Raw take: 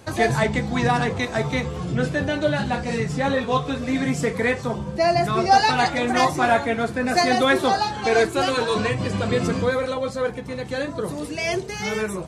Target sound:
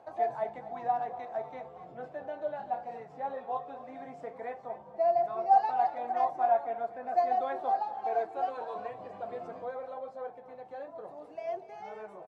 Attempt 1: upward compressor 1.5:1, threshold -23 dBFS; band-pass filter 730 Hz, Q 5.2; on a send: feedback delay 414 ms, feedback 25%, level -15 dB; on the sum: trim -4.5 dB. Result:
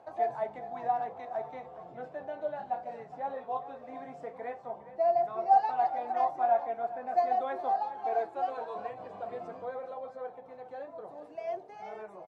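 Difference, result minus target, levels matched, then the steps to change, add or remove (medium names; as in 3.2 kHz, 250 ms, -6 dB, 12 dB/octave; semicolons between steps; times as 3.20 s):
echo 171 ms late
change: feedback delay 243 ms, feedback 25%, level -15 dB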